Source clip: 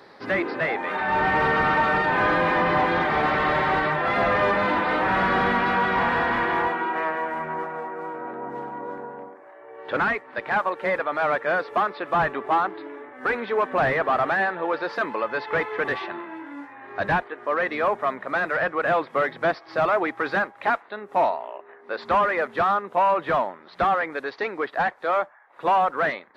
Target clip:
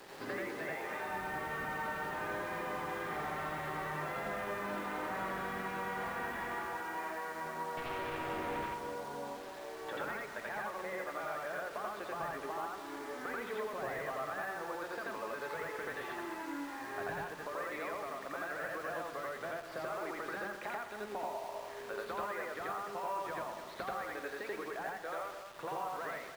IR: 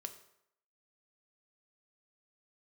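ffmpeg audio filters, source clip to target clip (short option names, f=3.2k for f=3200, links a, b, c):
-filter_complex "[0:a]asettb=1/sr,asplit=3[a][b][c];[a]atrim=end=7.774[d];[b]atrim=start=7.77:end=8.66,asetpts=PTS-STARTPTS,afade=t=in:d=0.004:c=qsin,afade=t=out:st=0.886:d=0.004:c=qsin,aeval=exprs='0.0794*sin(PI/2*2.82*val(0)/0.0794)':c=same[e];[c]atrim=start=8.656[f];[d][e]acrossfade=d=0.004:c1=hsin:c2=qsin[g];[g][f]acrossfade=d=0.004:c1=qsin:c2=hsin,acompressor=threshold=-36dB:ratio=10,aecho=1:1:209|418|627|836:0.299|0.122|0.0502|0.0206,acrusher=bits=7:mix=0:aa=0.000001,acrossover=split=4100[h][i];[i]acompressor=threshold=-55dB:ratio=4:attack=1:release=60[j];[h][j]amix=inputs=2:normalize=0,asplit=2[k][l];[1:a]atrim=start_sample=2205,adelay=85[m];[l][m]afir=irnorm=-1:irlink=0,volume=4.5dB[n];[k][n]amix=inputs=2:normalize=0,volume=-5dB"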